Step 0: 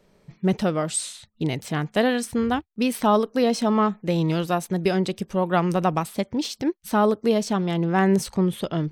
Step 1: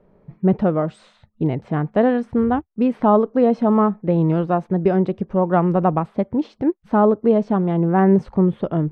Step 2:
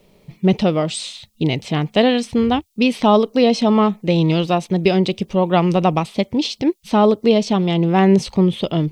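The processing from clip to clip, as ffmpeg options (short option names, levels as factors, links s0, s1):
-af "lowpass=1100,volume=1.78"
-af "aexciter=amount=13.1:drive=5.9:freq=2400,volume=1.19"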